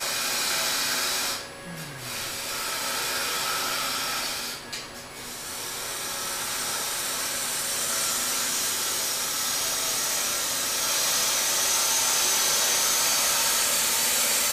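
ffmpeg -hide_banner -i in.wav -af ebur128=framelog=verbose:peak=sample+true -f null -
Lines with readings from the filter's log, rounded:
Integrated loudness:
  I:         -23.7 LUFS
  Threshold: -33.9 LUFS
Loudness range:
  LRA:         8.0 LU
  Threshold: -44.4 LUFS
  LRA low:   -28.7 LUFS
  LRA high:  -20.6 LUFS
Sample peak:
  Peak:      -12.9 dBFS
True peak:
  Peak:      -12.1 dBFS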